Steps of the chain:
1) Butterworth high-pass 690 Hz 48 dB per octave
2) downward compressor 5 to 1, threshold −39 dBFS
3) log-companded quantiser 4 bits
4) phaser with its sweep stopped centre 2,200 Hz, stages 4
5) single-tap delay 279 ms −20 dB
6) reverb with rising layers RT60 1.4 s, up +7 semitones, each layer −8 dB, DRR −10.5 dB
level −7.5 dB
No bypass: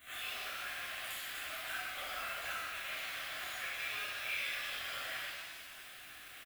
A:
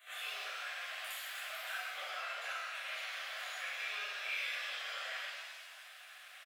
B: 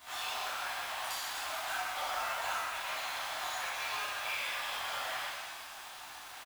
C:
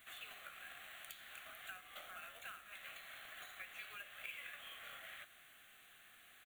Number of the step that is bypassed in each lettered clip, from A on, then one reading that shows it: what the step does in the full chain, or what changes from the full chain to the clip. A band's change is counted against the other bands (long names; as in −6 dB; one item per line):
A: 3, distortion level −11 dB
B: 4, 1 kHz band +6.5 dB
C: 6, change in momentary loudness spread +3 LU